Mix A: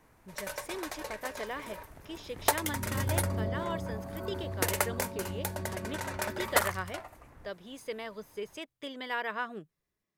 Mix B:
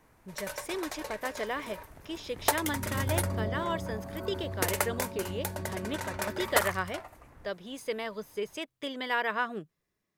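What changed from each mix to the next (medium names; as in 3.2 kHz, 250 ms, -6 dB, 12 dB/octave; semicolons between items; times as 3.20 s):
speech +4.5 dB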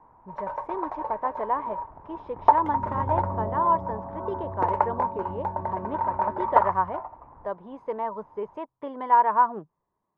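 master: add resonant low-pass 950 Hz, resonance Q 7.3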